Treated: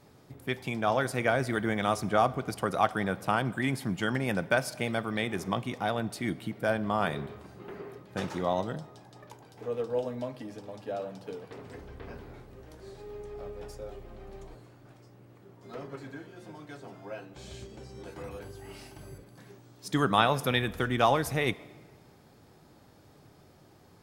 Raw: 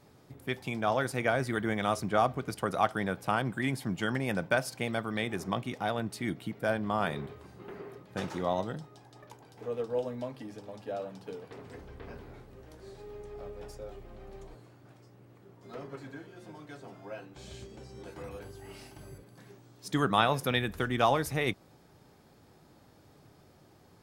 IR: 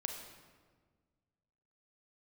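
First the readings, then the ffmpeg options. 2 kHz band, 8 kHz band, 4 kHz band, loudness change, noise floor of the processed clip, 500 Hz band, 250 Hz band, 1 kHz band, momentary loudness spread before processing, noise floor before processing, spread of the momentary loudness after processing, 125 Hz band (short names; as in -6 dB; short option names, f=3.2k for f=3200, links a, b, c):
+1.5 dB, +1.5 dB, +1.5 dB, +1.5 dB, -58 dBFS, +1.5 dB, +1.5 dB, +1.5 dB, 20 LU, -60 dBFS, 20 LU, +1.5 dB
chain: -filter_complex "[0:a]asplit=2[a][b];[1:a]atrim=start_sample=2205[c];[b][c]afir=irnorm=-1:irlink=0,volume=-12dB[d];[a][d]amix=inputs=2:normalize=0"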